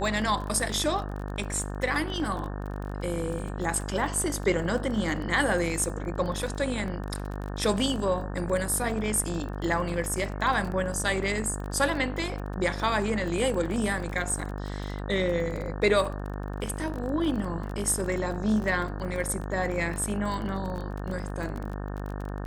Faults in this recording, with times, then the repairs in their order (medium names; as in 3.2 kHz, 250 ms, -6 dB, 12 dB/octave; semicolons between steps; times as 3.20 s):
buzz 50 Hz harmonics 36 -34 dBFS
crackle 28 per s -33 dBFS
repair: de-click; de-hum 50 Hz, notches 36